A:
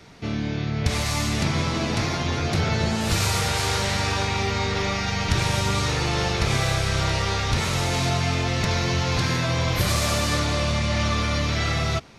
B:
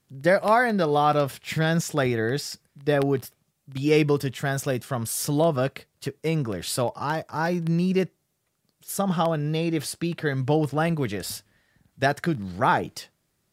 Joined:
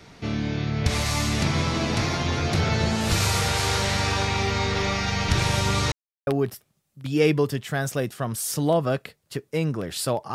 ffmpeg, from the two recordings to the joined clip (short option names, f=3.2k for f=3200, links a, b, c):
-filter_complex "[0:a]apad=whole_dur=10.34,atrim=end=10.34,asplit=2[a][b];[a]atrim=end=5.92,asetpts=PTS-STARTPTS,afade=t=out:st=5.916:d=0.004:c=hsin[c];[b]atrim=start=5.92:end=6.27,asetpts=PTS-STARTPTS,volume=0[d];[1:a]atrim=start=2.98:end=7.05,asetpts=PTS-STARTPTS,afade=t=in:d=0.004:c=hsin[e];[c][d][e]concat=n=3:v=0:a=1"